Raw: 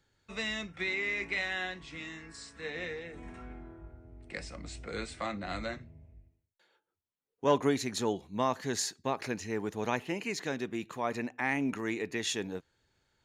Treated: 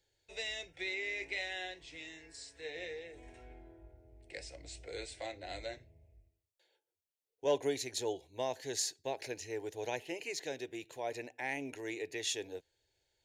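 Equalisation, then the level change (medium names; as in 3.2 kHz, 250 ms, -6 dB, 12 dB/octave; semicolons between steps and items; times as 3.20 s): bass shelf 370 Hz -5.5 dB; static phaser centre 500 Hz, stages 4; -1.0 dB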